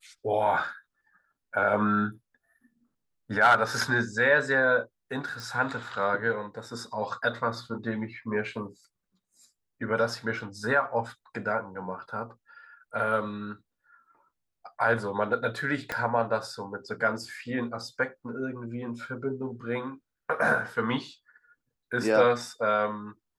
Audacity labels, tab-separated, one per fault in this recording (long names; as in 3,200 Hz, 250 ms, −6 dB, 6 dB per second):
5.400000	5.400000	click
15.920000	15.920000	click −15 dBFS